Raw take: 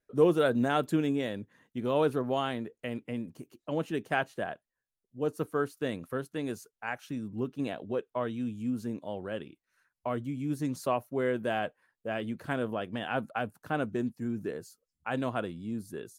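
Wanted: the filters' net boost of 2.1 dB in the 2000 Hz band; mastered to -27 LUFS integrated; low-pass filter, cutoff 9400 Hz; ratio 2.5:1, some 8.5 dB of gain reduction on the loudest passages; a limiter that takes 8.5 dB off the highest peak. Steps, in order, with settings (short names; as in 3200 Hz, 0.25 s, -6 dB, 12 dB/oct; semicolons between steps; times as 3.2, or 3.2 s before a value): LPF 9400 Hz; bell 2000 Hz +3 dB; compressor 2.5:1, threshold -31 dBFS; gain +11.5 dB; limiter -14.5 dBFS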